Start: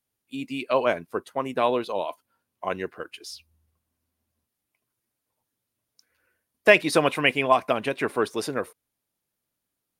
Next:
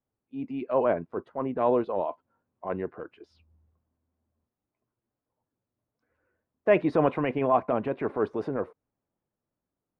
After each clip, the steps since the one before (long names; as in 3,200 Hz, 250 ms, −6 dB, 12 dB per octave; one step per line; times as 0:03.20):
transient designer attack −7 dB, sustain +2 dB
low-pass filter 1,000 Hz 12 dB per octave
level +1.5 dB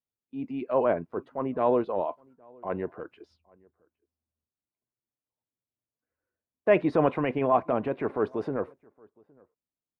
noise gate −59 dBFS, range −14 dB
slap from a distant wall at 140 metres, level −28 dB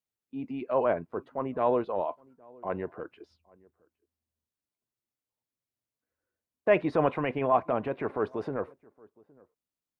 dynamic equaliser 270 Hz, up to −4 dB, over −33 dBFS, Q 0.71